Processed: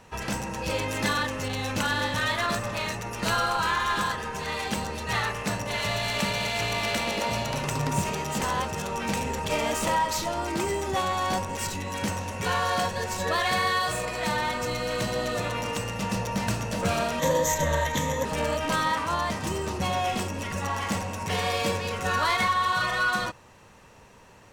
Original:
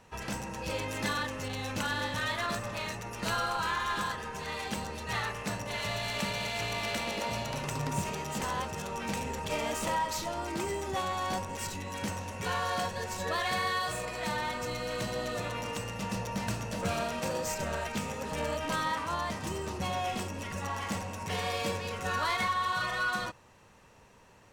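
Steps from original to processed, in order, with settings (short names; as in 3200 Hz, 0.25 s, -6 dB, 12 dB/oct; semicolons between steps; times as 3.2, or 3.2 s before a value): 17.19–18.25 ripple EQ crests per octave 1.1, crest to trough 13 dB; gain +6 dB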